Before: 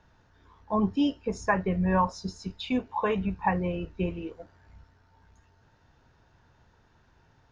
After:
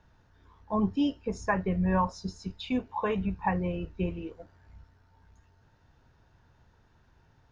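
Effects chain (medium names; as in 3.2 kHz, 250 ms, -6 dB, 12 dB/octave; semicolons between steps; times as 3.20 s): bass shelf 170 Hz +4.5 dB; trim -3 dB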